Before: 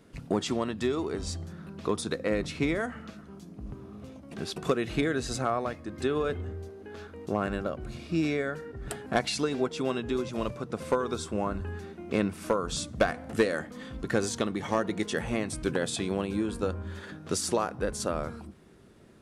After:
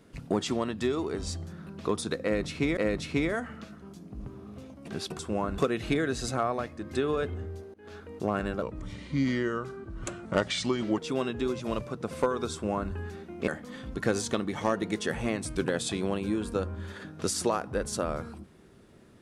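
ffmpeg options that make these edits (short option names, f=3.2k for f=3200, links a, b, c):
-filter_complex "[0:a]asplit=8[a][b][c][d][e][f][g][h];[a]atrim=end=2.772[i];[b]atrim=start=2.228:end=4.652[j];[c]atrim=start=11.218:end=11.612[k];[d]atrim=start=4.648:end=6.81,asetpts=PTS-STARTPTS,afade=t=out:st=2.158:d=0.004:c=hsin:silence=0.0630957[l];[e]atrim=start=6.81:end=7.694,asetpts=PTS-STARTPTS,afade=t=in:d=0.33:c=qsin:silence=0.0630957[m];[f]atrim=start=7.69:end=9.67,asetpts=PTS-STARTPTS,asetrate=37044,aresample=44100[n];[g]atrim=start=9.666:end=12.172[o];[h]atrim=start=13.548[p];[i][j]acrossfade=d=0.004:c1=hsin:c2=hsin[q];[q][k]acrossfade=d=0.004:c1=hsin:c2=hsin[r];[l][m]concat=n=2:v=0:a=1[s];[r][s]acrossfade=d=0.004:c1=hsin:c2=hsin[t];[t][n]acrossfade=d=0.004:c1=hsin:c2=hsin[u];[u][o]acrossfade=d=0.004:c1=hsin:c2=hsin[v];[v][p]acrossfade=d=0.004:c1=hsin:c2=hsin"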